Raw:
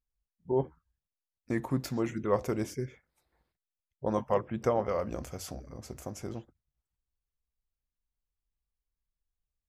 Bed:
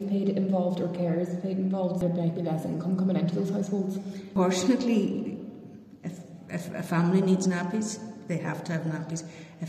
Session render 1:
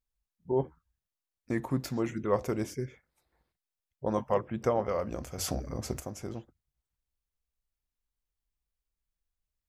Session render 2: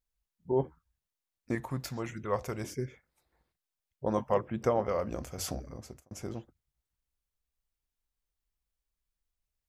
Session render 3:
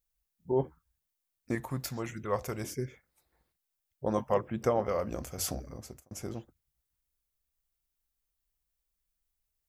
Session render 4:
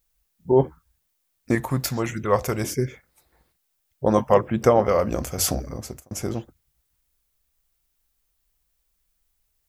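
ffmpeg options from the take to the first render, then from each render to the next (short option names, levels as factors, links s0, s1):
-filter_complex "[0:a]asplit=3[s0][s1][s2];[s0]atrim=end=5.382[s3];[s1]atrim=start=5.378:end=6.002,asetpts=PTS-STARTPTS,volume=2.66[s4];[s2]atrim=start=5.998[s5];[s3][s4]acrossfade=d=0.004:c1=hsin:c2=hsin[s6];[s6][s5]acrossfade=d=0.004:c1=hsin:c2=hsin"
-filter_complex "[0:a]asettb=1/sr,asplit=3[s0][s1][s2];[s0]atrim=end=1.554[s3];[s1]atrim=start=1.55:end=2.64,asetpts=PTS-STARTPTS,afade=t=in:d=0.004:c=qsin,afade=t=out:st=1.086:d=0.004:c=qsin,equalizer=f=290:t=o:w=1.5:g=-9[s4];[s2]atrim=start=2.636[s5];[s3][s4]acrossfade=d=0.004:c1=hsin:c2=qsin[s6];[s6][s5]acrossfade=d=0.004:c1=qsin:c2=hsin,asplit=2[s7][s8];[s7]atrim=end=6.11,asetpts=PTS-STARTPTS,afade=t=out:st=5.21:d=0.9[s9];[s8]atrim=start=6.11,asetpts=PTS-STARTPTS,afade=t=in:d=0.004:c=hsin[s10];[s9][s10]concat=n=2:v=0:a=1"
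-af "highshelf=f=9300:g=9.5,bandreject=f=960:w=29"
-af "volume=3.55"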